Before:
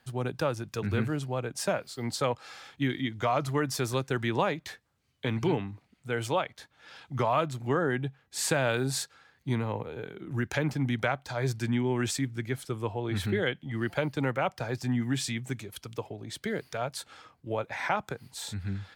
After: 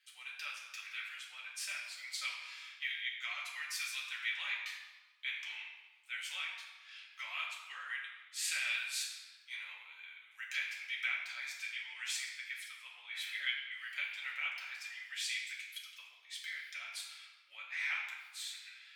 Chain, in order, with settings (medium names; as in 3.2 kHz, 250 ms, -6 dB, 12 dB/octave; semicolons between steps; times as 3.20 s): ladder high-pass 2 kHz, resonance 55%; reverberation RT60 1.3 s, pre-delay 4 ms, DRR -5 dB; trim -1 dB